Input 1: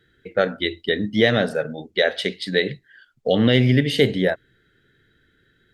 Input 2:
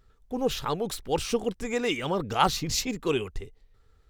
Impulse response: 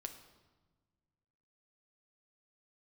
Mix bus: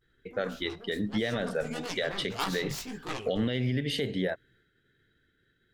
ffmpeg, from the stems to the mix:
-filter_complex "[0:a]acompressor=threshold=0.126:ratio=6,agate=range=0.0224:threshold=0.00141:ratio=3:detection=peak,volume=0.531[s0];[1:a]aeval=exprs='0.355*(cos(1*acos(clip(val(0)/0.355,-1,1)))-cos(1*PI/2))+0.1*(cos(7*acos(clip(val(0)/0.355,-1,1)))-cos(7*PI/2))':c=same,flanger=delay=16.5:depth=4.5:speed=1.6,volume=0.501,afade=t=in:st=1.22:d=0.36:silence=0.354813,asplit=2[s1][s2];[s2]volume=0.668[s3];[2:a]atrim=start_sample=2205[s4];[s3][s4]afir=irnorm=-1:irlink=0[s5];[s0][s1][s5]amix=inputs=3:normalize=0,alimiter=limit=0.112:level=0:latency=1:release=56"

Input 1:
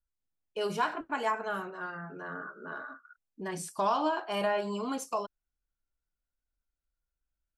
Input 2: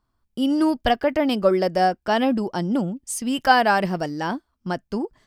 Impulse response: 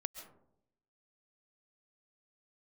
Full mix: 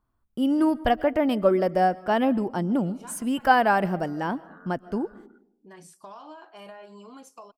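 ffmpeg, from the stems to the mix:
-filter_complex "[0:a]acompressor=threshold=0.0316:ratio=5,adelay=2250,volume=0.282,asplit=2[s0][s1];[s1]volume=0.0794[s2];[1:a]equalizer=f=5000:t=o:w=1.4:g=-11.5,volume=0.631,asplit=3[s3][s4][s5];[s4]volume=0.398[s6];[s5]apad=whole_len=437541[s7];[s0][s7]sidechaincompress=threshold=0.0224:ratio=8:attack=16:release=294[s8];[2:a]atrim=start_sample=2205[s9];[s2][s6]amix=inputs=2:normalize=0[s10];[s10][s9]afir=irnorm=-1:irlink=0[s11];[s8][s3][s11]amix=inputs=3:normalize=0"

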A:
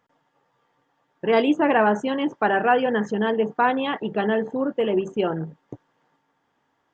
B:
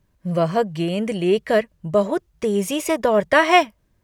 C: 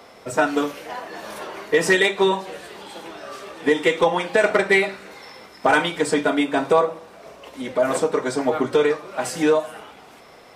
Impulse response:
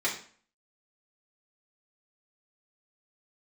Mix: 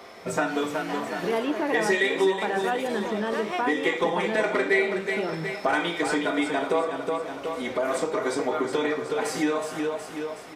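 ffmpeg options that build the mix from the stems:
-filter_complex "[0:a]volume=0.75[s0];[1:a]volume=0.2[s1];[2:a]volume=0.668,asplit=3[s2][s3][s4];[s3]volume=0.447[s5];[s4]volume=0.631[s6];[3:a]atrim=start_sample=2205[s7];[s5][s7]afir=irnorm=-1:irlink=0[s8];[s6]aecho=0:1:369|738|1107|1476|1845|2214:1|0.45|0.202|0.0911|0.041|0.0185[s9];[s0][s1][s2][s8][s9]amix=inputs=5:normalize=0,acompressor=threshold=0.0447:ratio=2"

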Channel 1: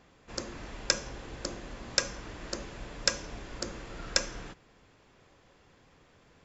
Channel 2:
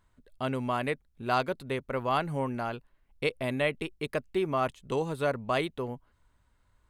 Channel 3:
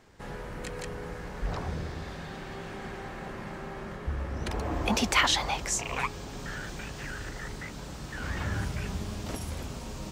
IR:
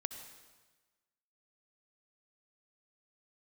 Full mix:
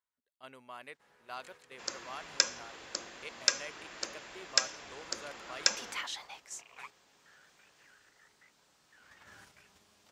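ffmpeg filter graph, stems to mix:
-filter_complex "[0:a]adelay=1500,volume=1.12[s0];[1:a]volume=0.237[s1];[2:a]adelay=800,volume=0.2[s2];[s0][s1][s2]amix=inputs=3:normalize=0,agate=range=0.501:threshold=0.00562:ratio=16:detection=peak,highpass=f=1200:p=1"

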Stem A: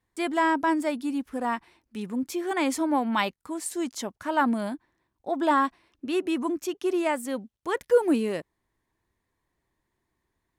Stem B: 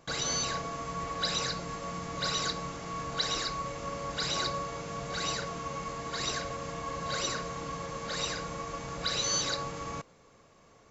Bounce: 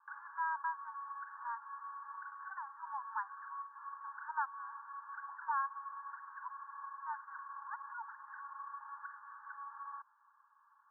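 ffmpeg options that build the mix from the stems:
-filter_complex "[0:a]aemphasis=mode=production:type=75fm,volume=0.266,asplit=2[s0][s1];[1:a]acompressor=threshold=0.0158:ratio=6,volume=0.708[s2];[s1]apad=whole_len=480848[s3];[s2][s3]sidechaincompress=threshold=0.0141:ratio=4:attack=35:release=181[s4];[s0][s4]amix=inputs=2:normalize=0,asuperpass=centerf=1200:order=20:qfactor=1.4"

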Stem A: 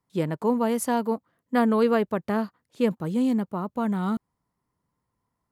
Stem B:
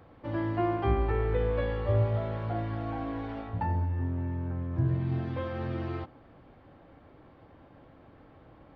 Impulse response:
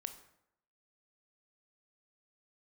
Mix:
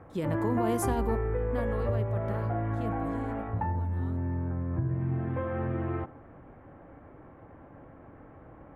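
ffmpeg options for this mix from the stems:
-filter_complex "[0:a]alimiter=limit=0.0891:level=0:latency=1,volume=0.596,afade=t=out:st=1.04:d=0.76:silence=0.375837,afade=t=out:st=2.92:d=0.48:silence=0.334965,asplit=2[s0][s1];[s1]volume=0.398[s2];[1:a]lowpass=f=2100:w=0.5412,lowpass=f=2100:w=1.3066,acompressor=threshold=0.0282:ratio=6,volume=1.19,asplit=2[s3][s4];[s4]volume=0.531[s5];[2:a]atrim=start_sample=2205[s6];[s2][s5]amix=inputs=2:normalize=0[s7];[s7][s6]afir=irnorm=-1:irlink=0[s8];[s0][s3][s8]amix=inputs=3:normalize=0,bandreject=f=4500:w=14"

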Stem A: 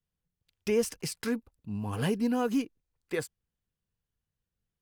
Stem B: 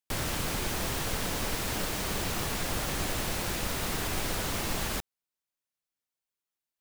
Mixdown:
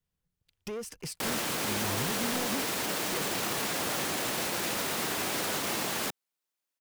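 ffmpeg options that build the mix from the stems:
-filter_complex "[0:a]acompressor=threshold=0.0251:ratio=5,asoftclip=type=tanh:threshold=0.0178,volume=1.26[s0];[1:a]highpass=210,alimiter=level_in=1.12:limit=0.0631:level=0:latency=1:release=20,volume=0.891,adelay=1100,volume=1.41[s1];[s0][s1]amix=inputs=2:normalize=0"

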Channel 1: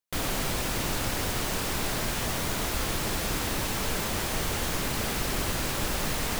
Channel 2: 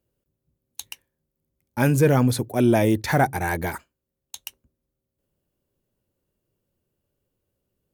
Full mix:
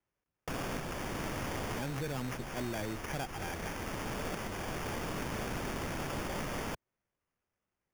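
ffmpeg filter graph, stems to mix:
-filter_complex "[0:a]adelay=350,volume=0.668[s0];[1:a]highshelf=f=3300:g=10.5,volume=0.168,asplit=2[s1][s2];[s2]apad=whole_len=297541[s3];[s0][s3]sidechaincompress=threshold=0.00891:ratio=3:attack=29:release=967[s4];[s4][s1]amix=inputs=2:normalize=0,acrossover=split=90|930[s5][s6][s7];[s5]acompressor=threshold=0.00562:ratio=4[s8];[s6]acompressor=threshold=0.0158:ratio=4[s9];[s7]acompressor=threshold=0.01:ratio=4[s10];[s8][s9][s10]amix=inputs=3:normalize=0,acrusher=samples=11:mix=1:aa=0.000001"

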